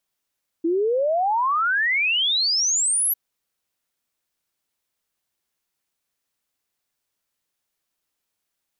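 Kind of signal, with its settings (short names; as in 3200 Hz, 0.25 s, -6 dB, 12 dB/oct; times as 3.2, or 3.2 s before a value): log sweep 320 Hz -> 12000 Hz 2.50 s -18 dBFS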